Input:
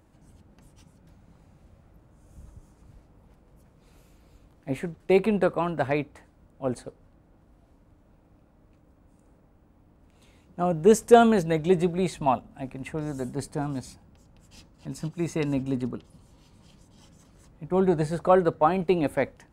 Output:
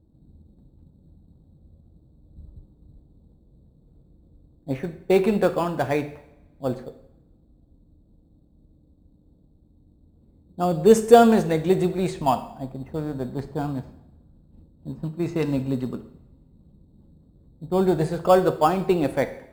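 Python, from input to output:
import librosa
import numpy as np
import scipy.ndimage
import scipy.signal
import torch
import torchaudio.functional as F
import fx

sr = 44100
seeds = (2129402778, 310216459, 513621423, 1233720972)

p1 = fx.env_lowpass(x, sr, base_hz=310.0, full_db=-21.0)
p2 = fx.sample_hold(p1, sr, seeds[0], rate_hz=4000.0, jitter_pct=0)
p3 = p1 + F.gain(torch.from_numpy(p2), -11.0).numpy()
y = fx.rev_double_slope(p3, sr, seeds[1], early_s=0.69, late_s=1.8, knee_db=-22, drr_db=9.0)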